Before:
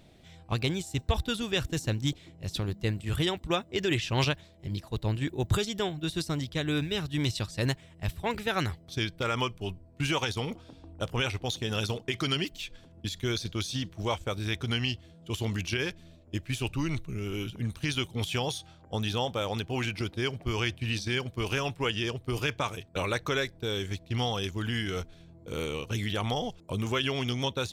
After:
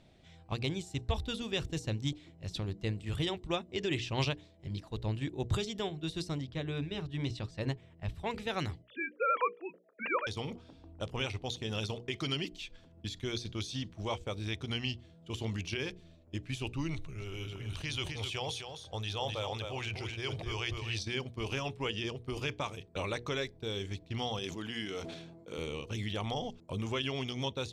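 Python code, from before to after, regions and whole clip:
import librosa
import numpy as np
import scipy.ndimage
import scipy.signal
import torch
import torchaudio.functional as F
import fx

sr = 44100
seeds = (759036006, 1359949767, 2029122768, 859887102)

y = fx.chain(x, sr, fx.high_shelf(hz=3900.0, db=-11.5),
    fx.hum_notches(base_hz=60, count=8), at=(6.38, 8.15))
y = fx.chain(y, sr, fx.sine_speech(),
    fx.cabinet(low_hz=430.0, low_slope=12, high_hz=3000.0, hz=(480.0, 740.0, 1300.0, 1800.0, 2700.0), db=(10, -7, 9, 7, 3)), at=(8.82, 10.27))
y = fx.chain(y, sr, fx.peak_eq(hz=230.0, db=-11.5, octaves=1.0),
    fx.echo_single(ms=257, db=-8.0),
    fx.sustainer(db_per_s=46.0), at=(16.94, 21.03))
y = fx.chain(y, sr, fx.highpass(hz=200.0, slope=12),
    fx.sustainer(db_per_s=42.0), at=(24.39, 25.58))
y = scipy.signal.sosfilt(scipy.signal.bessel(2, 6900.0, 'lowpass', norm='mag', fs=sr, output='sos'), y)
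y = fx.hum_notches(y, sr, base_hz=60, count=8)
y = fx.dynamic_eq(y, sr, hz=1500.0, q=2.5, threshold_db=-51.0, ratio=4.0, max_db=-6)
y = F.gain(torch.from_numpy(y), -4.5).numpy()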